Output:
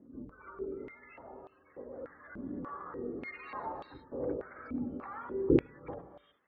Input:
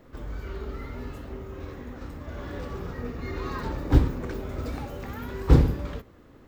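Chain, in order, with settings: spectral gate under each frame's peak -25 dB strong; non-linear reverb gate 0.39 s rising, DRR 6.5 dB; stepped band-pass 3.4 Hz 250–3500 Hz; gain +4.5 dB

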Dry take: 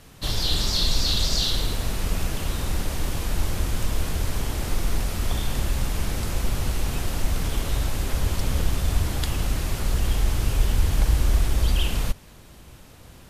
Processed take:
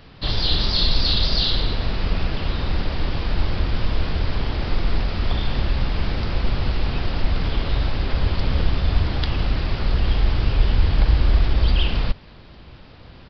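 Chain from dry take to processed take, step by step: downsampling 11025 Hz; gain +3.5 dB

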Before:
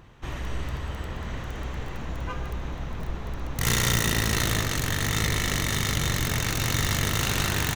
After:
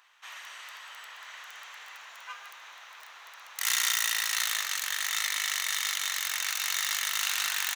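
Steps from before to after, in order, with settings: Bessel high-pass 1500 Hz, order 4

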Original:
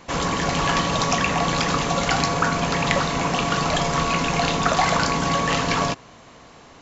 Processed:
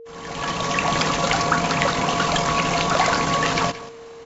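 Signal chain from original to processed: opening faded in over 1.46 s; low shelf 230 Hz -4.5 dB; echo 0.288 s -16.5 dB; tempo 1.6×; whine 460 Hz -40 dBFS; gain +2 dB

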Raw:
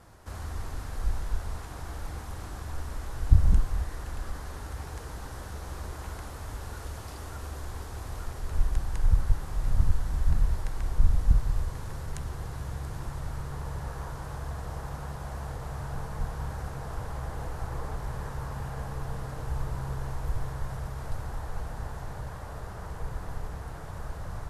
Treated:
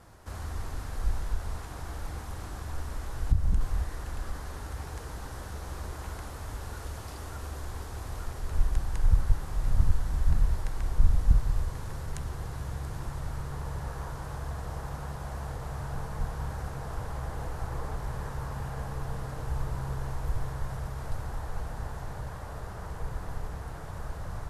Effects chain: 1.23–3.61 compressor 2.5:1, threshold -21 dBFS, peak gain reduction 8 dB

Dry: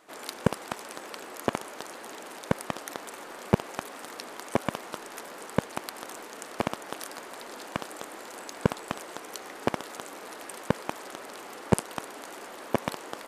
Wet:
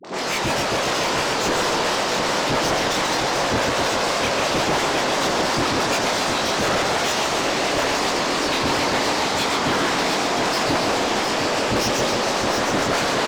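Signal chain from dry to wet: pitch shift by moving bins -9.5 st; dispersion highs, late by 46 ms, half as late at 500 Hz; chorus voices 2, 0.19 Hz, delay 25 ms, depth 1.1 ms; overdrive pedal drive 43 dB, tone 5900 Hz, clips at -9 dBFS; echo 0.711 s -5.5 dB; warbling echo 0.138 s, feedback 67%, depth 184 cents, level -4 dB; gain -6 dB

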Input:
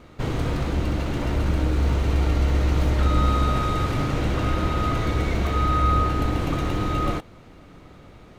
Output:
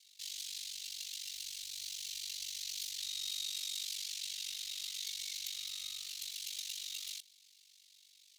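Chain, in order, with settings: inverse Chebyshev high-pass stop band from 1200 Hz, stop band 60 dB; ring modulator 24 Hz; gain +7.5 dB

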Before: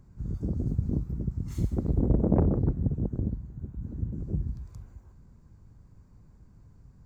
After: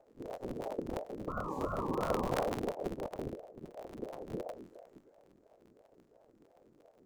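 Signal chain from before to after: cycle switcher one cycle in 2, inverted; painted sound noise, 1.28–2.32, 440–880 Hz -28 dBFS; ring modulator with a swept carrier 440 Hz, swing 40%, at 2.9 Hz; gain -8 dB

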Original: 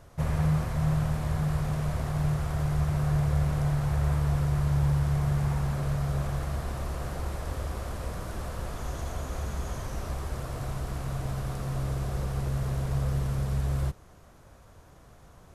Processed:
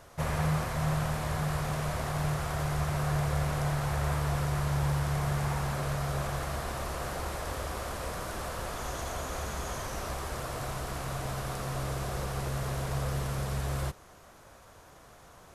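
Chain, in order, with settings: low shelf 300 Hz -11.5 dB; gain +5 dB

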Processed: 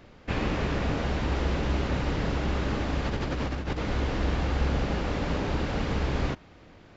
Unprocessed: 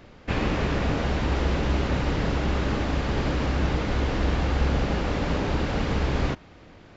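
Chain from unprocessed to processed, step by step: 3.05–3.78 negative-ratio compressor -26 dBFS, ratio -0.5; gain -3 dB

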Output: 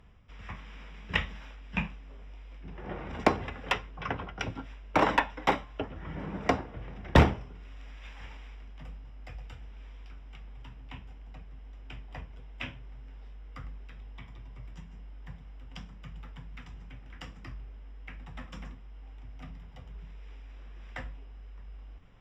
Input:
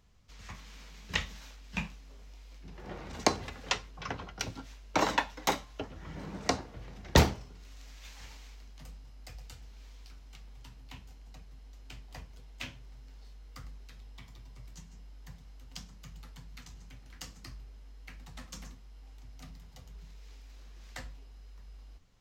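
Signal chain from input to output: polynomial smoothing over 25 samples; reverse; upward compressor, threshold -53 dBFS; reverse; one-sided clip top -20.5 dBFS; gain +4.5 dB

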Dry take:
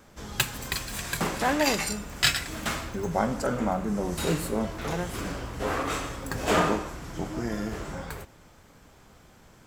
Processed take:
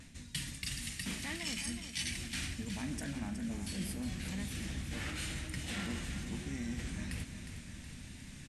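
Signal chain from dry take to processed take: band shelf 630 Hz -16 dB 2.3 oct; reverse; compressor 6:1, threshold -44 dBFS, peak gain reduction 24 dB; reverse; feedback echo 0.415 s, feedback 54%, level -9 dB; vibrato 1 Hz 34 cents; varispeed +14%; brick-wall FIR low-pass 12000 Hz; gain +6 dB

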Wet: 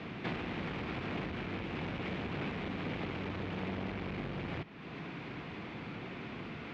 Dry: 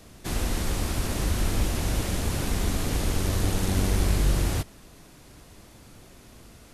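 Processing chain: compressor 3:1, threshold -42 dBFS, peak gain reduction 17.5 dB; speaker cabinet 150–3100 Hz, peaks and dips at 160 Hz +5 dB, 590 Hz -6 dB, 2300 Hz +5 dB; core saturation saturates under 640 Hz; gain +10 dB

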